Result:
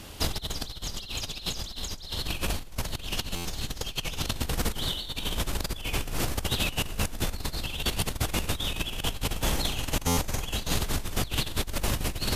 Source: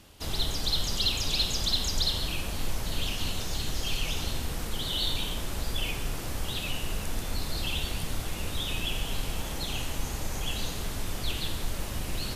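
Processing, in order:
compressor whose output falls as the input rises −34 dBFS, ratio −0.5
buffer that repeats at 0:03.35/0:10.07, samples 512, times 8
level +5 dB

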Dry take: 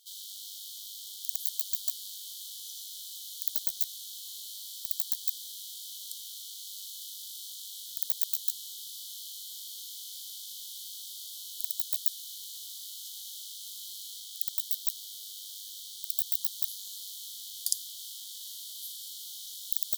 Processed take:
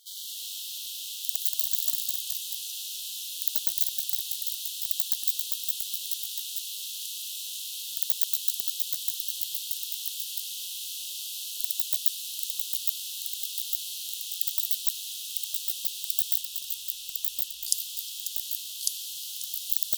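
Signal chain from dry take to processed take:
0:16.41–0:17.68: RIAA equalisation playback
delay with pitch and tempo change per echo 96 ms, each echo −1 semitone, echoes 3
echo through a band-pass that steps 180 ms, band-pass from 1,100 Hz, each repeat 1.4 octaves, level −6 dB
level +3.5 dB

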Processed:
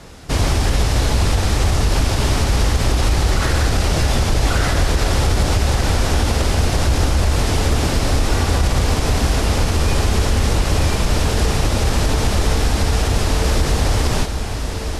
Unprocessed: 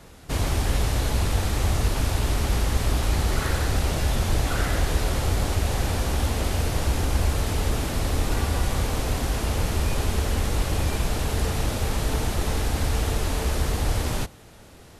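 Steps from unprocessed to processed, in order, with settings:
low-pass filter 10,000 Hz 12 dB per octave
parametric band 5,200 Hz +3.5 dB 0.38 octaves
feedback delay with all-pass diffusion 1,531 ms, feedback 45%, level −8 dB
brickwall limiter −15 dBFS, peak gain reduction 5.5 dB
level +8 dB

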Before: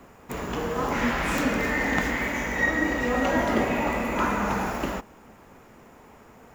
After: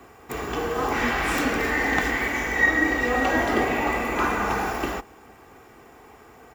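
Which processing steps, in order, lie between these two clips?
high-pass filter 41 Hz
low-shelf EQ 490 Hz −3 dB
notch filter 6,500 Hz, Q 13
comb filter 2.6 ms, depth 46%
level +2.5 dB

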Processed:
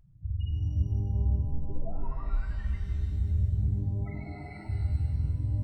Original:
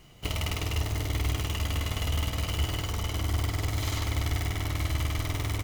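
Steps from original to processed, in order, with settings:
0:01.45: tape start 1.90 s
0:04.04–0:04.68: band-pass filter 370–3,200 Hz
spectral peaks only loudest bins 4
reverb with rising layers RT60 2.4 s, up +12 semitones, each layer −8 dB, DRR 2.5 dB

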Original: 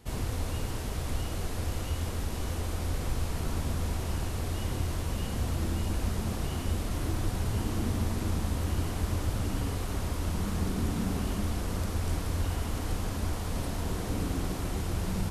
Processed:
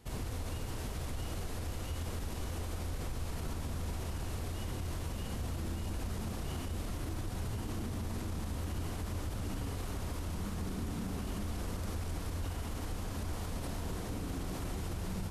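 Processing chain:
brickwall limiter −26 dBFS, peak gain reduction 8 dB
level −3.5 dB

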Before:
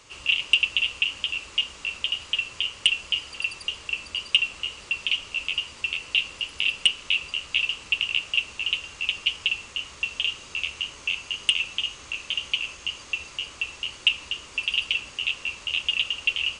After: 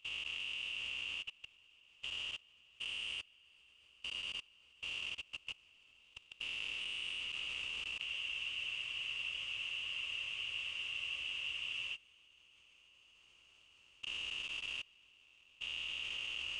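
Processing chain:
spectrum averaged block by block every 400 ms
noise gate −31 dBFS, range −23 dB
dynamic equaliser 2,000 Hz, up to +3 dB, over −46 dBFS, Q 2.2
downward compressor 2.5 to 1, threshold −46 dBFS, peak gain reduction 14 dB
feedback delay with all-pass diffusion 637 ms, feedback 73%, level −12 dB
on a send at −7.5 dB: convolution reverb RT60 3.0 s, pre-delay 85 ms
on the sum: output level in coarse steps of 24 dB
frozen spectrum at 0:08.08, 3.86 s
level +6 dB

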